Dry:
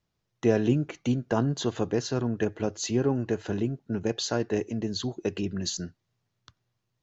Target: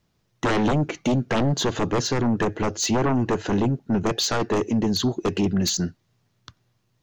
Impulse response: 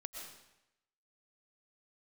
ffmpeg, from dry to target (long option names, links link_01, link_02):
-af "aeval=exprs='0.335*sin(PI/2*5.01*val(0)/0.335)':channel_layout=same,equalizer=frequency=220:width_type=o:width=1.2:gain=3,volume=-8.5dB"